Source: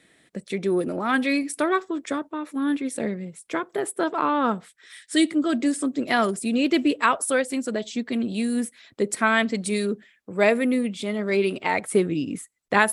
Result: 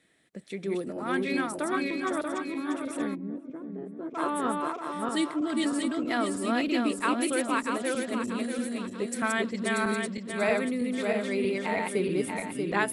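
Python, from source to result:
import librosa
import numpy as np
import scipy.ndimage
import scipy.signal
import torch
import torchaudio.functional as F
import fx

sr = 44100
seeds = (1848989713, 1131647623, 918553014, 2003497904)

y = fx.reverse_delay_fb(x, sr, ms=318, feedback_pct=63, wet_db=-1.0)
y = fx.bandpass_q(y, sr, hz=210.0, q=1.3, at=(3.14, 4.14), fade=0.02)
y = y * 10.0 ** (-8.5 / 20.0)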